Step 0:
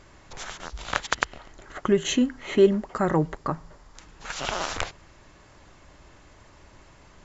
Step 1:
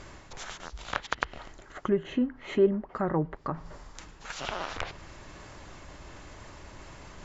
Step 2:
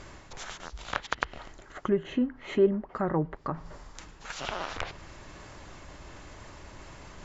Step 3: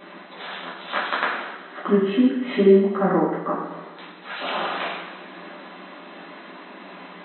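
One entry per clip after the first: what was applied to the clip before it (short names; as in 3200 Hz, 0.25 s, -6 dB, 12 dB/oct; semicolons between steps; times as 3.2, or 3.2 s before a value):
treble ducked by the level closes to 1600 Hz, closed at -21 dBFS; reverse; upward compressor, threshold -30 dBFS; reverse; gain -5 dB
nothing audible
two-slope reverb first 0.93 s, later 2.6 s, DRR -9 dB; FFT band-pass 170–4100 Hz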